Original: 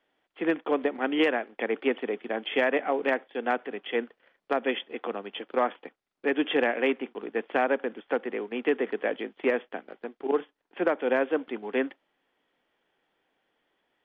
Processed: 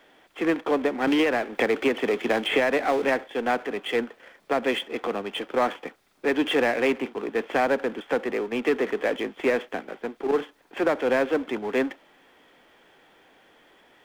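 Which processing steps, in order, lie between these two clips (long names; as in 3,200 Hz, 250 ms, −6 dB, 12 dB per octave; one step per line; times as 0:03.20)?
power curve on the samples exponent 0.7
notch filter 2,900 Hz, Q 27
0:01.07–0:03.05: multiband upward and downward compressor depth 100%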